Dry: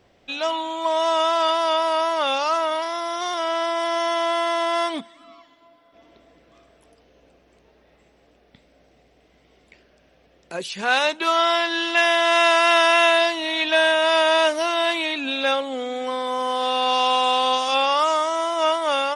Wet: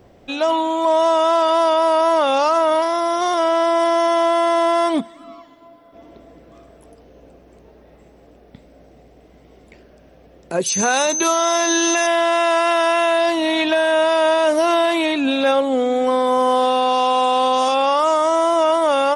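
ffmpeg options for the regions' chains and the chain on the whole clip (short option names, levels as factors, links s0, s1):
-filter_complex "[0:a]asettb=1/sr,asplit=3[s0][s1][s2];[s0]atrim=end=10.664[s3];[s1]atrim=start=10.66:end=12.07,asetpts=PTS-STARTPTS,afade=t=in:d=0.004:c=qsin,afade=t=out:st=1.406:d=0.004:c=qsin,bass=f=250:g=1,treble=f=4000:g=9,bandreject=f=3100:w=13,aeval=exprs='val(0)+0.0708*sin(2*PI*6200*n/s)':c=same[s4];[s2]atrim=start=12.066[s5];[s3][s4]acrossfade=d=0.004:c1=hsin:c2=qsin[s6];[s6][s5]acrossfade=d=0.004:c1=qsin:c2=hsin,equalizer=f=3200:w=0.38:g=-11.5,alimiter=level_in=8.91:limit=0.891:release=50:level=0:latency=1,volume=0.447"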